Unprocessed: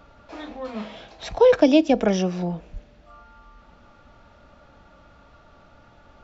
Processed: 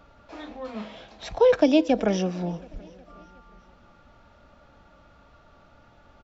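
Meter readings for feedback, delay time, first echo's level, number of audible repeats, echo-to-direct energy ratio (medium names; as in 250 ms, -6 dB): 59%, 364 ms, -23.0 dB, 3, -21.0 dB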